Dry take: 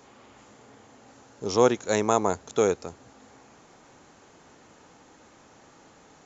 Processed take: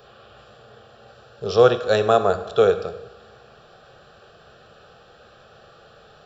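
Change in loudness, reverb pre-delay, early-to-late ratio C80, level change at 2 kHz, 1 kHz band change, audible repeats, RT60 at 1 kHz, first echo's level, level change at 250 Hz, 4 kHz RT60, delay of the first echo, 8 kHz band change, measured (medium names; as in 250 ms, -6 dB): +5.5 dB, 5 ms, 13.5 dB, +5.5 dB, +4.5 dB, no echo, 1.1 s, no echo, -1.5 dB, 0.85 s, no echo, no reading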